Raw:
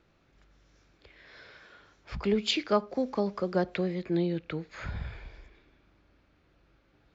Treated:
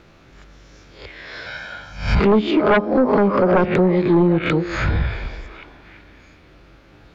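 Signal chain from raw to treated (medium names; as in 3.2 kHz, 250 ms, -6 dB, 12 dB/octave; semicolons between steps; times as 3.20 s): reverse spectral sustain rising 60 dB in 0.48 s; low-pass that closes with the level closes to 1.1 kHz, closed at -24 dBFS; 1.46–2.20 s: comb 1.3 ms, depth 87%; on a send: repeats whose band climbs or falls 376 ms, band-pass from 360 Hz, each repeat 1.4 oct, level -12 dB; on the sum: sine folder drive 8 dB, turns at -13.5 dBFS; trim +4 dB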